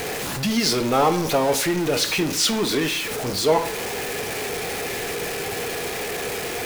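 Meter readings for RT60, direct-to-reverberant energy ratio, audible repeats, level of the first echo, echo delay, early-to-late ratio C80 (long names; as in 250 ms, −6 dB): 0.75 s, 9.0 dB, no echo audible, no echo audible, no echo audible, 16.0 dB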